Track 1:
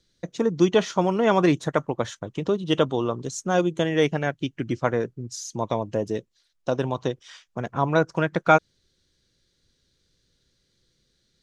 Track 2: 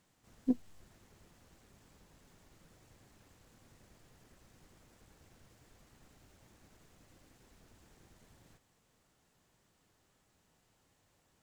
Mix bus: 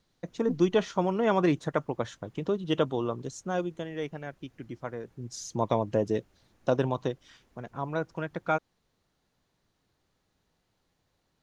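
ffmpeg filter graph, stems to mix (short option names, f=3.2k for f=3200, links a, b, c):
-filter_complex "[0:a]volume=8dB,afade=t=out:st=3.26:d=0.59:silence=0.375837,afade=t=in:st=5.07:d=0.32:silence=0.223872,afade=t=out:st=6.74:d=0.67:silence=0.316228[a];[1:a]bandreject=f=7.9k:w=7.9,volume=-2.5dB[b];[a][b]amix=inputs=2:normalize=0,highshelf=f=4.3k:g=-6.5"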